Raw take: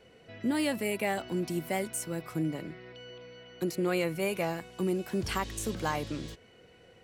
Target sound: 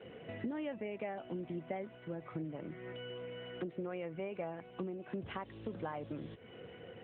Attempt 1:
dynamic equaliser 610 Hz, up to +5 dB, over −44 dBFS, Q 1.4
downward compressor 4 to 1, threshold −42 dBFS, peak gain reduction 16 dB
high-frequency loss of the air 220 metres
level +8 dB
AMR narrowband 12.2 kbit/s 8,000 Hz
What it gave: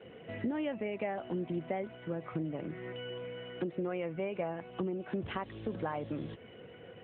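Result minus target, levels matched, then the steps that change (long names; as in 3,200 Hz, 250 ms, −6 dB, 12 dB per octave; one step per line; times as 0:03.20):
downward compressor: peak gain reduction −5 dB
change: downward compressor 4 to 1, threshold −48.5 dBFS, peak gain reduction 21 dB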